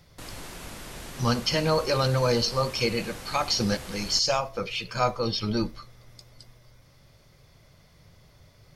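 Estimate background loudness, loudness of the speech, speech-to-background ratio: −40.5 LKFS, −26.0 LKFS, 14.5 dB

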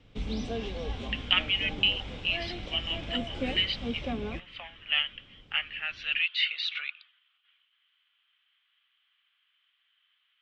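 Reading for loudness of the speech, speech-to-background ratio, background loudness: −29.5 LKFS, 7.5 dB, −37.0 LKFS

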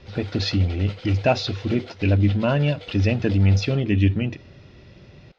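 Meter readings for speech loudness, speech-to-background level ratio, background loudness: −22.0 LKFS, 19.5 dB, −41.5 LKFS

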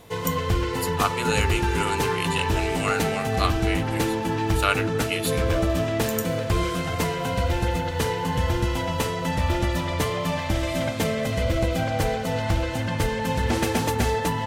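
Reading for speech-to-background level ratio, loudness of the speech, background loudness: −4.5 dB, −29.5 LKFS, −25.0 LKFS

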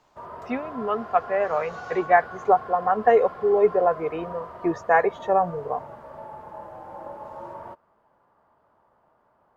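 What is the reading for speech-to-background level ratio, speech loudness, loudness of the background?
15.5 dB, −23.5 LKFS, −39.0 LKFS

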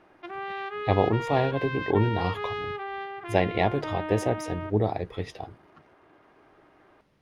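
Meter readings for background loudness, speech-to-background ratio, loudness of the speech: −34.5 LKFS, 7.0 dB, −27.5 LKFS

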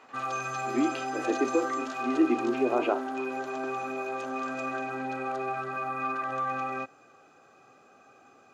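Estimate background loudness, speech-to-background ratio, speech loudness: −33.0 LKFS, 3.5 dB, −29.5 LKFS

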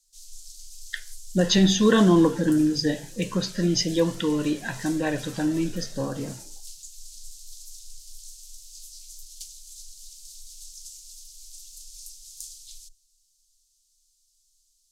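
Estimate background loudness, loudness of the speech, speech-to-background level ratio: −42.5 LKFS, −23.0 LKFS, 19.5 dB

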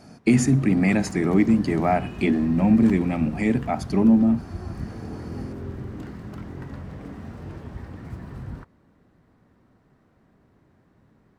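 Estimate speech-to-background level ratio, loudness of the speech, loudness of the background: 15.5 dB, −21.0 LKFS, −36.5 LKFS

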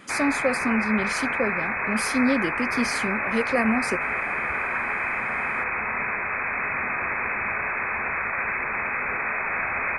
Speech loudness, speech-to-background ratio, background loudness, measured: −27.0 LKFS, −1.5 dB, −25.5 LKFS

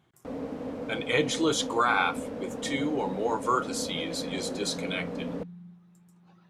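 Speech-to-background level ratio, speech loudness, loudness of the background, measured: 7.0 dB, −29.5 LKFS, −36.5 LKFS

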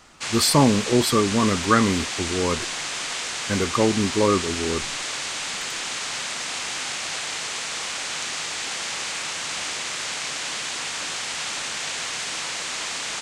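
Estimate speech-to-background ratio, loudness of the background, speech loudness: 5.0 dB, −27.0 LKFS, −22.0 LKFS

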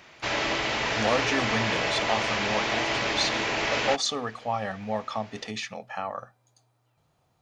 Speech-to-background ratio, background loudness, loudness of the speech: −4.0 dB, −26.5 LKFS, −30.5 LKFS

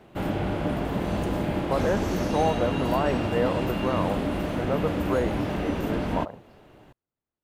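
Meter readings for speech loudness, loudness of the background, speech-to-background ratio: −29.5 LKFS, −28.0 LKFS, −1.5 dB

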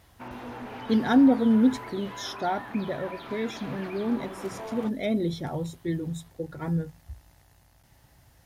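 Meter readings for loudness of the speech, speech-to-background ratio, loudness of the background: −27.0 LKFS, 13.5 dB, −40.5 LKFS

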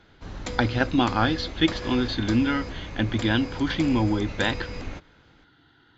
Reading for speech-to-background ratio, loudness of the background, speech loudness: 11.0 dB, −36.0 LKFS, −25.0 LKFS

